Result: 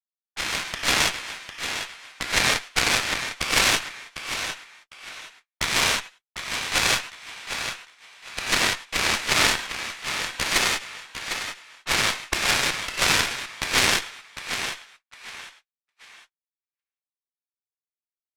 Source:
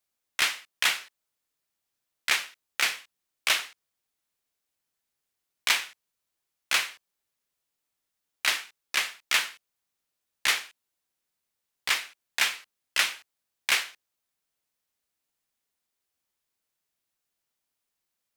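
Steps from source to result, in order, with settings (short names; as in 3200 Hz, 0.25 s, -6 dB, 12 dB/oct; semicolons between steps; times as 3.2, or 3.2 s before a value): local time reversal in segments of 92 ms; AGC gain up to 14.5 dB; on a send: feedback echo 0.752 s, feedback 36%, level -6 dB; on the sum: non-linear reverb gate 0.22 s flat, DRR -7 dB; gate -37 dBFS, range -43 dB; LPF 9400 Hz 12 dB/oct; harmoniser -12 st -11 dB, -7 st -10 dB; added harmonics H 2 -7 dB, 3 -12 dB, 6 -34 dB, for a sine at 4 dBFS; maximiser -1.5 dB; gain -1 dB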